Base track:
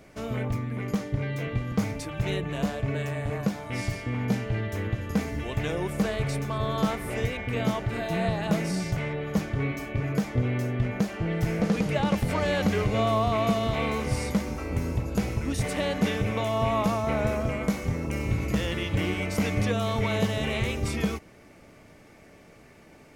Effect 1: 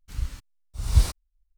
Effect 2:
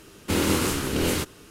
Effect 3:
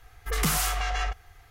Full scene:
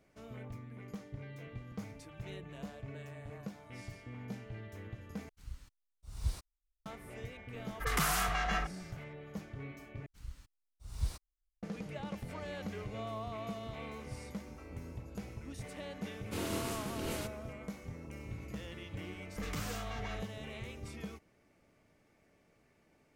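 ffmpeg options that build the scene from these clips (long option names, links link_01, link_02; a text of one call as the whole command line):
ffmpeg -i bed.wav -i cue0.wav -i cue1.wav -i cue2.wav -filter_complex "[1:a]asplit=2[link_01][link_02];[3:a]asplit=2[link_03][link_04];[0:a]volume=-17dB[link_05];[link_03]equalizer=frequency=1300:width=0.7:gain=7.5[link_06];[link_04]equalizer=frequency=11000:width_type=o:width=0.48:gain=-14.5[link_07];[link_05]asplit=3[link_08][link_09][link_10];[link_08]atrim=end=5.294[link_11];[link_01]atrim=end=1.57,asetpts=PTS-STARTPTS,volume=-16.5dB[link_12];[link_09]atrim=start=6.856:end=10.064[link_13];[link_02]atrim=end=1.57,asetpts=PTS-STARTPTS,volume=-16.5dB[link_14];[link_10]atrim=start=11.626[link_15];[link_06]atrim=end=1.5,asetpts=PTS-STARTPTS,volume=-8.5dB,afade=type=in:duration=0.004:curve=hsin,afade=type=out:start_time=1.496:duration=0.004:curve=hsin,adelay=332514S[link_16];[2:a]atrim=end=1.5,asetpts=PTS-STARTPTS,volume=-15dB,afade=type=in:duration=0.004:curve=hsin,afade=type=out:start_time=1.496:duration=0.004:curve=hsin,adelay=16030[link_17];[link_07]atrim=end=1.5,asetpts=PTS-STARTPTS,volume=-15dB,afade=type=in:duration=0.004:curve=hsin,afade=type=out:start_time=1.496:duration=0.004:curve=hsin,adelay=19100[link_18];[link_11][link_12]acrossfade=duration=0.004:curve1=hsin:curve2=hsin[link_19];[link_19][link_13]acrossfade=duration=0.004:curve1=hsin:curve2=hsin[link_20];[link_20][link_14]acrossfade=duration=0.004:curve1=hsin:curve2=hsin[link_21];[link_21][link_15]acrossfade=duration=0.004:curve1=hsin:curve2=hsin[link_22];[link_22][link_16][link_17][link_18]amix=inputs=4:normalize=0" out.wav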